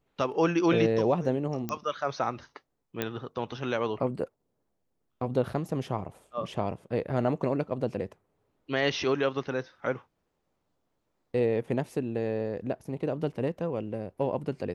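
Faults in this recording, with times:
0:01.69: click −18 dBFS
0:03.02: click −14 dBFS

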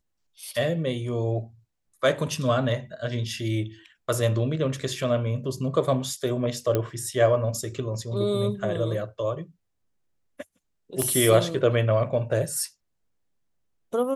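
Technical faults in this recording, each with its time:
0:06.75: click −11 dBFS
0:11.02: click −12 dBFS

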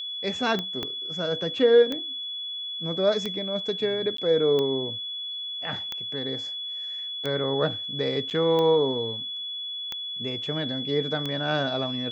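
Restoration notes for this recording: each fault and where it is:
scratch tick 45 rpm −16 dBFS
whistle 3,400 Hz −31 dBFS
0:00.83: click −16 dBFS
0:04.17–0:04.18: drop-out 13 ms
0:08.30–0:08.31: drop-out 7.8 ms

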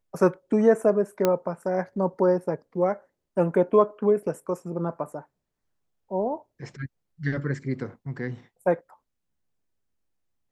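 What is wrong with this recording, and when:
0:01.25: click −8 dBFS

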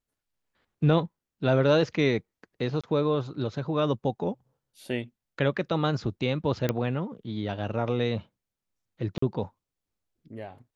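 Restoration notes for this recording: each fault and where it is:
0:02.81–0:02.84: drop-out 26 ms
0:06.69: click −12 dBFS
0:09.18–0:09.22: drop-out 44 ms

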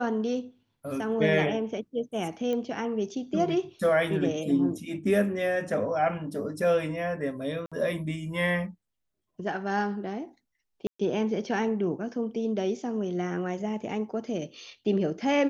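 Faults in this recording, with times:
0:02.53: click −21 dBFS
0:07.66–0:07.72: drop-out 56 ms
0:10.87–0:10.99: drop-out 125 ms

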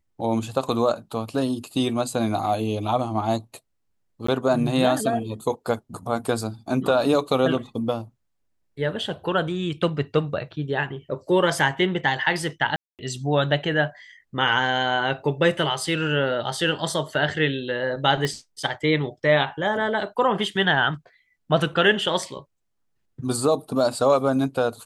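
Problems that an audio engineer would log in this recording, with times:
0:04.27–0:04.28: drop-out 14 ms
0:12.76–0:12.99: drop-out 228 ms
0:18.25: click −12 dBFS

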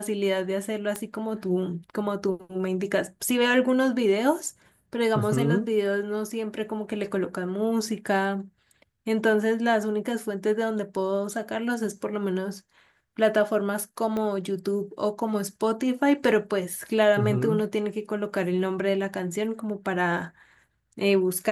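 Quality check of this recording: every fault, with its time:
0:00.96: click −15 dBFS
0:14.17: click −18 dBFS

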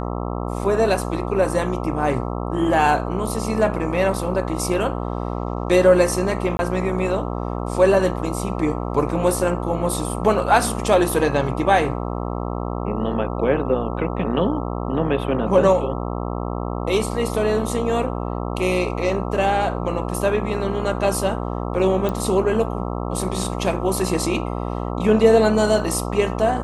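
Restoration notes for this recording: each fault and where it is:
mains buzz 60 Hz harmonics 22 −26 dBFS
0:06.57–0:06.59: drop-out 21 ms
0:22.09: click −12 dBFS

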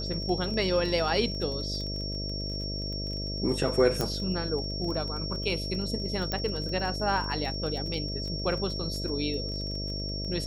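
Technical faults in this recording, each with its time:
mains buzz 50 Hz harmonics 13 −35 dBFS
surface crackle 26 per second −35 dBFS
whistle 5,500 Hz −35 dBFS
0:04.01: click −13 dBFS
0:06.32: click −15 dBFS

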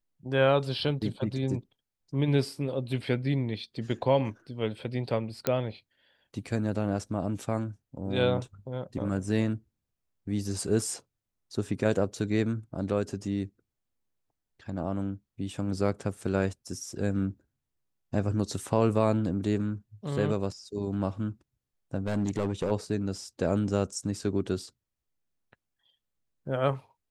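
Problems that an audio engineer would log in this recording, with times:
0:05.47: click −11 dBFS
0:22.07–0:22.72: clipping −23 dBFS

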